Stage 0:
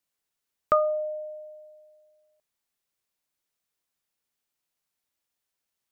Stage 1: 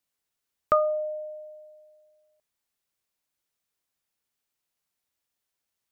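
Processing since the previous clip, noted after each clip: peaking EQ 77 Hz +3.5 dB 0.63 oct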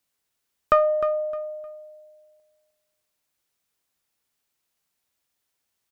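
single-diode clipper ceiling -13 dBFS; on a send: feedback delay 307 ms, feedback 26%, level -11.5 dB; on the sum: trim +5 dB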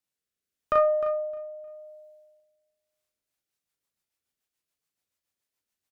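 early reflections 36 ms -3 dB, 59 ms -10 dB; rotary cabinet horn 0.85 Hz, later 7 Hz, at 2.80 s; trim -7 dB

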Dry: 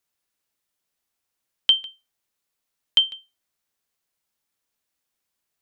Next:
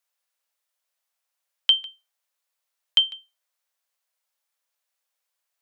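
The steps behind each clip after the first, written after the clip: elliptic high-pass 510 Hz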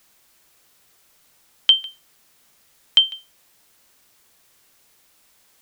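added noise white -63 dBFS; trim +4 dB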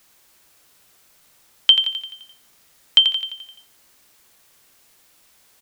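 feedback delay 86 ms, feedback 55%, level -8.5 dB; trim +1.5 dB

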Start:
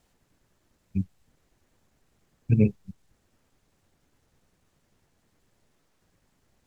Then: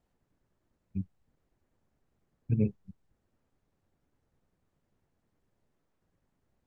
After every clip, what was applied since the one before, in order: treble shelf 2.1 kHz -11.5 dB; trim -7 dB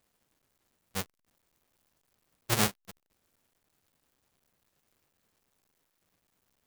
square wave that keeps the level; tilt EQ +3 dB/octave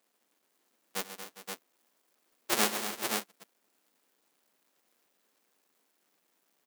high-pass 230 Hz 24 dB/octave; on a send: multi-tap echo 85/136/230/269/406/524 ms -17.5/-11/-10/-15/-15.5/-5 dB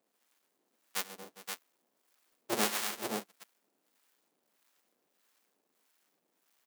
harmonic tremolo 1.6 Hz, depth 70%, crossover 820 Hz; trim +1.5 dB

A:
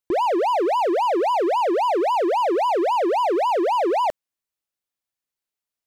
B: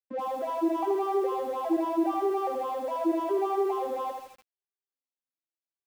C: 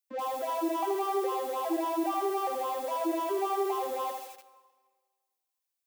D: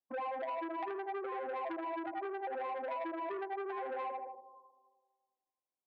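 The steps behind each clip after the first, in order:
vocoder on a broken chord major triad, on C4, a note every 411 ms; flutter echo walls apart 12 m, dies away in 0.26 s; bit-crushed delay 80 ms, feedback 55%, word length 7-bit, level -5 dB; trim -8.5 dB
tilt EQ +3 dB/octave; on a send at -17.5 dB: reverberation RT60 1.5 s, pre-delay 110 ms
brick-wall FIR band-pass 190–1100 Hz; compression 10:1, threshold -36 dBFS, peak gain reduction 11 dB; transformer saturation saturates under 1.2 kHz; trim +2 dB

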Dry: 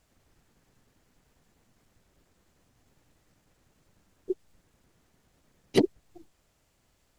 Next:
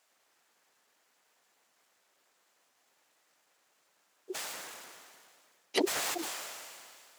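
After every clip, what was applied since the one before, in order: high-pass 720 Hz 12 dB/octave; decay stretcher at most 26 dB/s; trim +1 dB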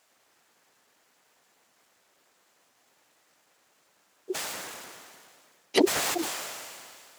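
bass shelf 280 Hz +8 dB; trim +5 dB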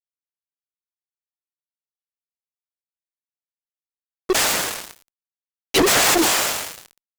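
fuzz box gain 36 dB, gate -40 dBFS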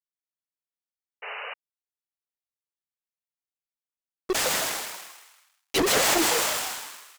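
frequency-shifting echo 158 ms, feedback 43%, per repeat +140 Hz, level -4.5 dB; painted sound noise, 1.22–1.54 s, 410–3000 Hz -29 dBFS; trim -7 dB

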